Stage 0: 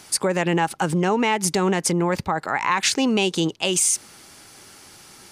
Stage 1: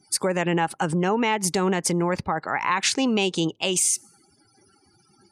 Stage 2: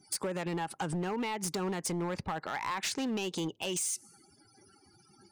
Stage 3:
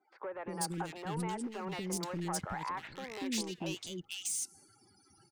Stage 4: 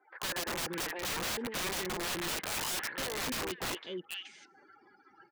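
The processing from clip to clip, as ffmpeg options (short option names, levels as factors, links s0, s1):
-af "afftdn=nr=34:nf=-43,volume=0.794"
-af "acompressor=threshold=0.0398:ratio=4,asoftclip=type=hard:threshold=0.0447,volume=0.794"
-filter_complex "[0:a]acrossover=split=400|2000[s0][s1][s2];[s0]adelay=240[s3];[s2]adelay=490[s4];[s3][s1][s4]amix=inputs=3:normalize=0,volume=0.75"
-af "highpass=400,equalizer=f=490:t=q:w=4:g=4,equalizer=f=710:t=q:w=4:g=-4,equalizer=f=1000:t=q:w=4:g=3,equalizer=f=1700:t=q:w=4:g=10,equalizer=f=2600:t=q:w=4:g=-4,lowpass=f=2700:w=0.5412,lowpass=f=2700:w=1.3066,aeval=exprs='(mod(84.1*val(0)+1,2)-1)/84.1':c=same,volume=2.66"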